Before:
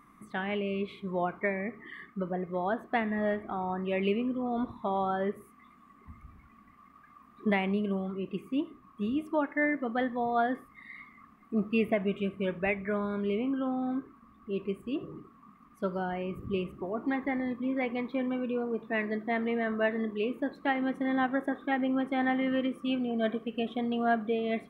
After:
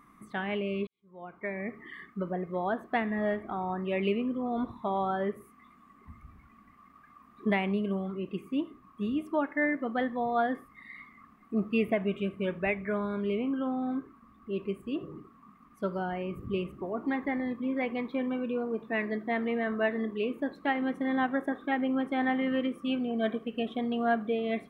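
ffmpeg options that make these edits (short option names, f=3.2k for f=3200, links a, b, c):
-filter_complex "[0:a]asplit=2[a][b];[a]atrim=end=0.87,asetpts=PTS-STARTPTS,afade=t=out:st=0.866:d=0.004:c=hsin[c];[b]atrim=start=0.87,asetpts=PTS-STARTPTS,afade=t=in:d=0.82:c=qua[d];[c][d]concat=n=2:v=0:a=1"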